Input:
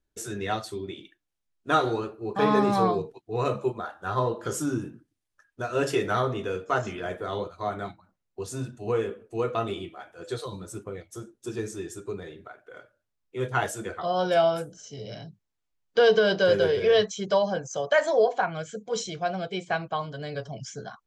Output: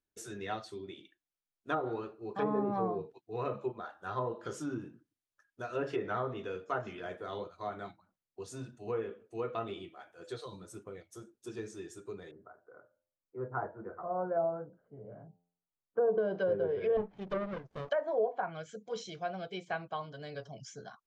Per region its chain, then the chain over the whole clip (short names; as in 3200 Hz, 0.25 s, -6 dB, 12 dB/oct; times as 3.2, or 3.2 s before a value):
12.31–16.18 steep low-pass 1400 Hz + de-hum 87.02 Hz, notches 11
16.97–17.89 LPF 3300 Hz 24 dB/oct + running maximum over 33 samples
whole clip: notch 7600 Hz, Q 19; treble ducked by the level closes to 830 Hz, closed at -18 dBFS; low shelf 74 Hz -11.5 dB; gain -8.5 dB